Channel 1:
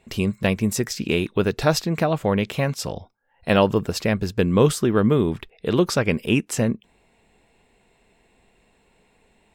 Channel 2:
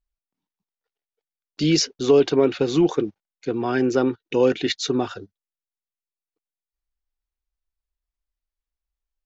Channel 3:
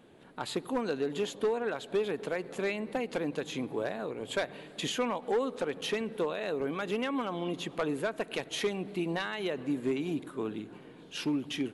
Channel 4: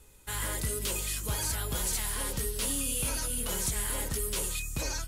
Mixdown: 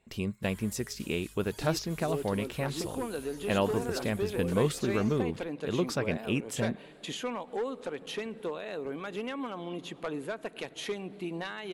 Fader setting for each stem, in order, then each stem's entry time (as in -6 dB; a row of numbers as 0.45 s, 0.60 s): -10.5 dB, -20.0 dB, -4.0 dB, -19.0 dB; 0.00 s, 0.00 s, 2.25 s, 0.15 s